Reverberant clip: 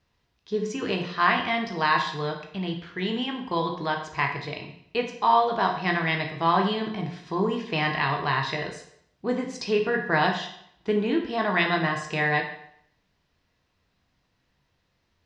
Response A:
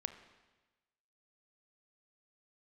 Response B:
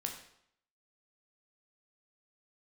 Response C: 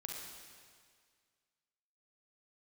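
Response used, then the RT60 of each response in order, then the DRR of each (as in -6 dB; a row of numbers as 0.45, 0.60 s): B; 1.2, 0.70, 1.9 s; 9.0, 2.0, -1.0 dB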